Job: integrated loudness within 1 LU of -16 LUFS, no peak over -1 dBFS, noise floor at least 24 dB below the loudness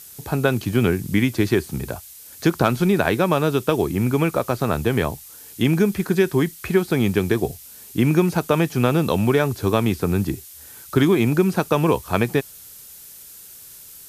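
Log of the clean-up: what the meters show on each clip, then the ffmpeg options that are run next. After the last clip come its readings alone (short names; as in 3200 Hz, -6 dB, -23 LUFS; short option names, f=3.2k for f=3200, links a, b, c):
noise floor -43 dBFS; noise floor target -45 dBFS; loudness -20.5 LUFS; peak -3.0 dBFS; loudness target -16.0 LUFS
-> -af "afftdn=nr=6:nf=-43"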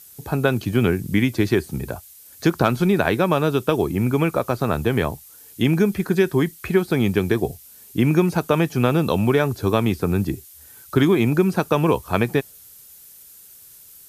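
noise floor -46 dBFS; loudness -20.5 LUFS; peak -3.0 dBFS; loudness target -16.0 LUFS
-> -af "volume=4.5dB,alimiter=limit=-1dB:level=0:latency=1"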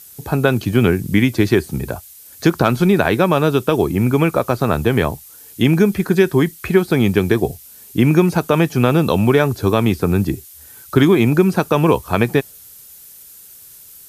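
loudness -16.5 LUFS; peak -1.0 dBFS; noise floor -42 dBFS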